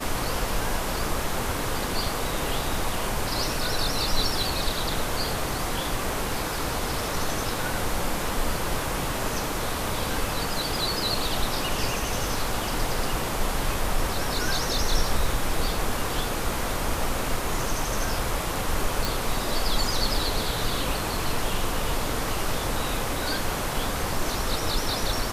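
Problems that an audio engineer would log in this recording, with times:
19.05 s: pop

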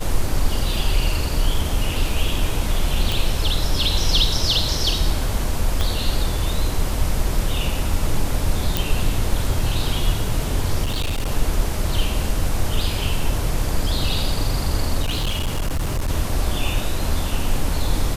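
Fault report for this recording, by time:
0.76 s: dropout 2.1 ms
3.12 s: pop
5.81 s: pop -8 dBFS
8.77 s: pop
10.83–11.31 s: clipped -18.5 dBFS
15.02–16.11 s: clipped -18 dBFS

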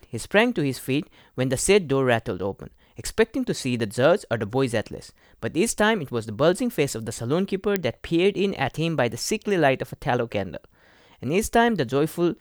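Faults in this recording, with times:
7.76 s: pop -7 dBFS

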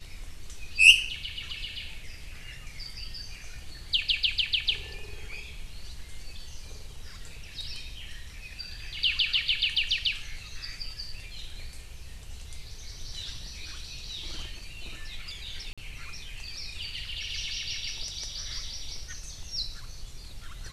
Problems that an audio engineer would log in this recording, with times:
15.73–15.78 s: dropout 46 ms

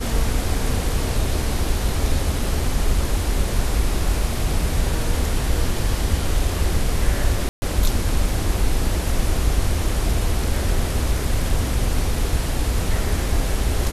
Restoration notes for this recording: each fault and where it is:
7.49–7.62 s: dropout 130 ms

